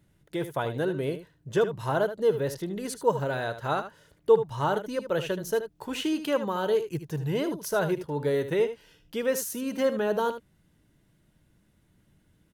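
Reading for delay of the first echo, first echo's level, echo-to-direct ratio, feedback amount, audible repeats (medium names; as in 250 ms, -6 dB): 76 ms, -11.0 dB, -11.0 dB, no regular repeats, 1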